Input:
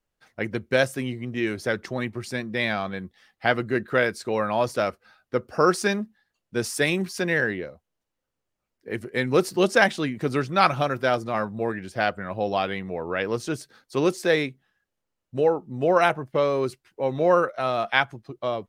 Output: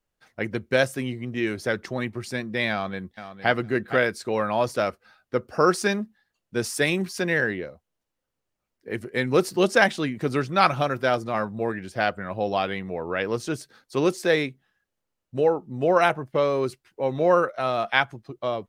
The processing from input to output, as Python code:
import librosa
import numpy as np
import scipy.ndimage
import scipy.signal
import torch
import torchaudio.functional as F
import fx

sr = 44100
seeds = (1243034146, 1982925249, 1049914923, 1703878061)

y = fx.echo_throw(x, sr, start_s=2.71, length_s=0.79, ms=460, feedback_pct=15, wet_db=-11.5)